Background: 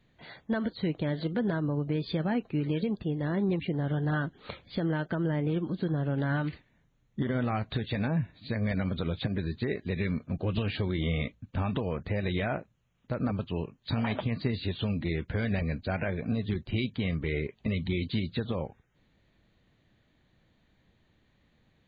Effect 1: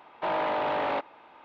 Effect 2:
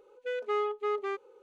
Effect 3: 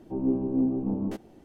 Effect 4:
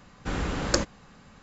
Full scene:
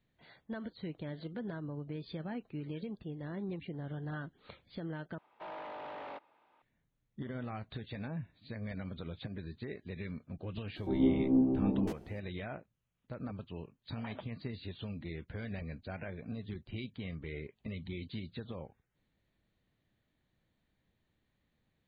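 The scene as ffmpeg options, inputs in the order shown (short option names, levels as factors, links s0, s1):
-filter_complex "[0:a]volume=0.266,asplit=2[s0][s1];[s0]atrim=end=5.184[s2];[1:a]atrim=end=1.44,asetpts=PTS-STARTPTS,volume=0.15[s3];[s1]atrim=start=6.616[s4];[3:a]atrim=end=1.44,asetpts=PTS-STARTPTS,volume=0.794,afade=t=in:d=0.004:c=hsin,afade=t=out:st=1.436:d=0.004:c=hsin,adelay=10760[s5];[s2][s3]acrossfade=d=0.004:c1=hsin:c2=hsin[s6];[s6][s4]acrossfade=d=0.004:c1=hsin:c2=hsin[s7];[s7][s5]amix=inputs=2:normalize=0"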